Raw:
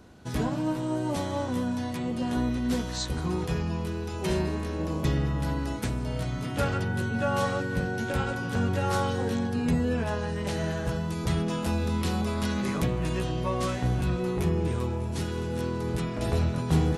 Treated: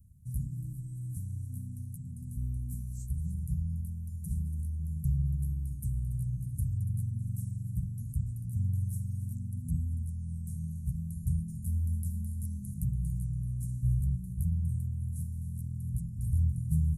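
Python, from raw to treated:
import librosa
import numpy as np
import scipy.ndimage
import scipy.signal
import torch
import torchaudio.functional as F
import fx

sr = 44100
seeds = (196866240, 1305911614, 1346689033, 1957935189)

y = scipy.signal.sosfilt(scipy.signal.cheby2(4, 60, [430.0, 3700.0], 'bandstop', fs=sr, output='sos'), x)
y = y + 10.0 ** (-14.0 / 20.0) * np.pad(y, (int(284 * sr / 1000.0), 0))[:len(y)]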